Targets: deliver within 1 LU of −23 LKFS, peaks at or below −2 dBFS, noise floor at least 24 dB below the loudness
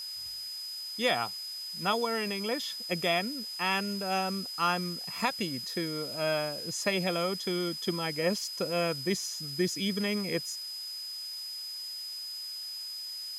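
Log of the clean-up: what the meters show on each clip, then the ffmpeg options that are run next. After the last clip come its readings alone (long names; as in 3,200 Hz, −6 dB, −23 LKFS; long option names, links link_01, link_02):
interfering tone 5,000 Hz; level of the tone −37 dBFS; background noise floor −40 dBFS; target noise floor −56 dBFS; integrated loudness −31.5 LKFS; sample peak −14.0 dBFS; target loudness −23.0 LKFS
→ -af "bandreject=frequency=5000:width=30"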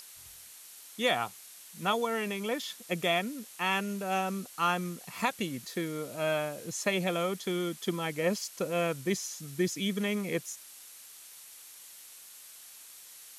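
interfering tone none found; background noise floor −51 dBFS; target noise floor −56 dBFS
→ -af "afftdn=noise_reduction=6:noise_floor=-51"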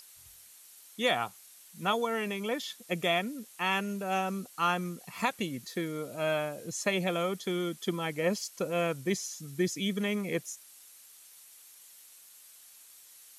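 background noise floor −55 dBFS; target noise floor −56 dBFS
→ -af "afftdn=noise_reduction=6:noise_floor=-55"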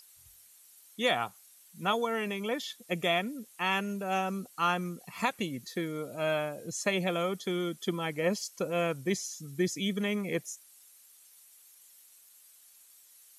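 background noise floor −59 dBFS; integrated loudness −32.0 LKFS; sample peak −14.5 dBFS; target loudness −23.0 LKFS
→ -af "volume=9dB"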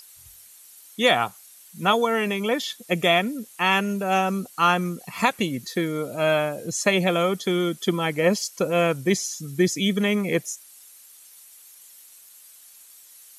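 integrated loudness −23.0 LKFS; sample peak −5.5 dBFS; background noise floor −50 dBFS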